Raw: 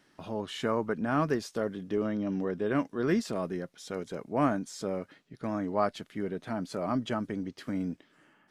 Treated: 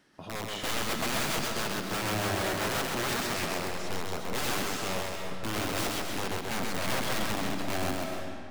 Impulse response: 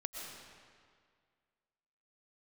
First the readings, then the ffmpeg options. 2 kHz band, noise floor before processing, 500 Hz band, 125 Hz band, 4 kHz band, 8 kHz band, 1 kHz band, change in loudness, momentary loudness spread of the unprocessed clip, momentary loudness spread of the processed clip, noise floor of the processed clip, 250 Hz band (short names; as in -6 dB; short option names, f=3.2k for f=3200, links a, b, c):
+8.0 dB, -66 dBFS, -2.5 dB, +0.5 dB, +12.5 dB, +14.0 dB, +2.0 dB, +1.0 dB, 9 LU, 6 LU, -39 dBFS, -5.0 dB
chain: -filter_complex "[0:a]aeval=exprs='(mod(25.1*val(0)+1,2)-1)/25.1':c=same,asplit=2[a][b];[1:a]atrim=start_sample=2205,adelay=131[c];[b][c]afir=irnorm=-1:irlink=0,volume=1dB[d];[a][d]amix=inputs=2:normalize=0"